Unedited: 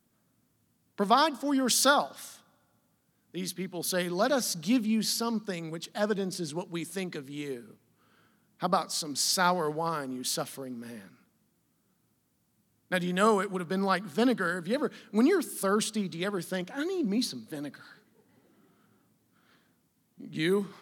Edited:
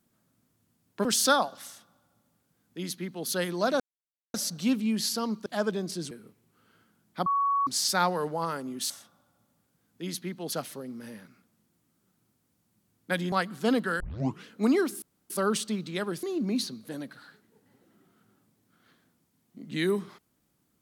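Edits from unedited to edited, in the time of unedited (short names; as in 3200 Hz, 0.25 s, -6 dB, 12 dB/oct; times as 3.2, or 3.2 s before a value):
1.05–1.63 cut
2.24–3.86 copy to 10.34
4.38 insert silence 0.54 s
5.5–5.89 cut
6.54–7.55 cut
8.7–9.11 bleep 1120 Hz -22.5 dBFS
13.14–13.86 cut
14.54 tape start 0.46 s
15.56 insert room tone 0.28 s
16.49–16.86 cut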